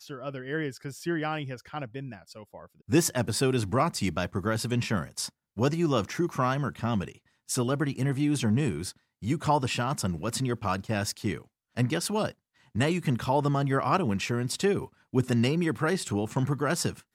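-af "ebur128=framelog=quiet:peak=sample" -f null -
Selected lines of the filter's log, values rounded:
Integrated loudness:
  I:         -28.7 LUFS
  Threshold: -39.0 LUFS
Loudness range:
  LRA:         3.1 LU
  Threshold: -48.8 LUFS
  LRA low:   -30.3 LUFS
  LRA high:  -27.3 LUFS
Sample peak:
  Peak:      -11.0 dBFS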